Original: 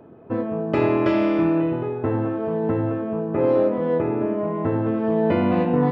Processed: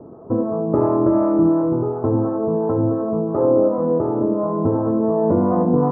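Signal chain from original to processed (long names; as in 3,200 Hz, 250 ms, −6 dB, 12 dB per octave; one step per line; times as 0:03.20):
Chebyshev low-pass filter 1,200 Hz, order 4
in parallel at +0.5 dB: downward compressor, threshold −28 dBFS, peak gain reduction 12.5 dB
on the sum: two-band tremolo in antiphase 2.8 Hz, depth 50%, crossover 490 Hz
on a send: echo with a time of its own for lows and highs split 510 Hz, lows 87 ms, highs 388 ms, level −15 dB
on the sum: level +3 dB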